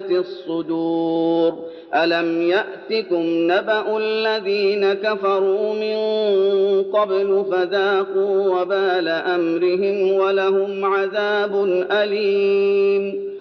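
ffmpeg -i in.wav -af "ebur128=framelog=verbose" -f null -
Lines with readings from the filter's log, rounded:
Integrated loudness:
  I:         -19.1 LUFS
  Threshold: -29.2 LUFS
Loudness range:
  LRA:         1.4 LU
  Threshold: -39.1 LUFS
  LRA low:   -19.8 LUFS
  LRA high:  -18.5 LUFS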